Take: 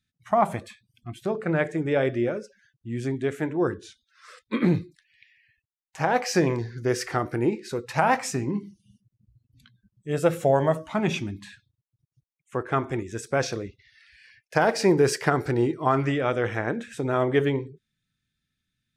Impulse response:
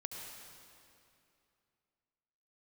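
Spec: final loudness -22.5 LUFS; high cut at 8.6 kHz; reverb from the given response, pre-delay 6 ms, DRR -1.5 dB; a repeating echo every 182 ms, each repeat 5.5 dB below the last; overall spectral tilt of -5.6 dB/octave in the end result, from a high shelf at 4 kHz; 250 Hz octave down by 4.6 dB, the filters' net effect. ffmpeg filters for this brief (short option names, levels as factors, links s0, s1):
-filter_complex "[0:a]lowpass=8600,equalizer=f=250:t=o:g=-7,highshelf=f=4000:g=-4.5,aecho=1:1:182|364|546|728|910|1092|1274:0.531|0.281|0.149|0.079|0.0419|0.0222|0.0118,asplit=2[s0][s1];[1:a]atrim=start_sample=2205,adelay=6[s2];[s1][s2]afir=irnorm=-1:irlink=0,volume=1.33[s3];[s0][s3]amix=inputs=2:normalize=0,volume=1.06"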